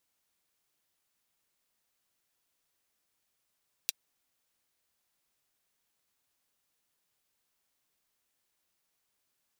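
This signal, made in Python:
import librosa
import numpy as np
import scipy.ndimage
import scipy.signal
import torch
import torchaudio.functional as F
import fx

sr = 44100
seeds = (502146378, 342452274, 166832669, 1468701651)

y = fx.drum_hat(sr, length_s=0.24, from_hz=3300.0, decay_s=0.03)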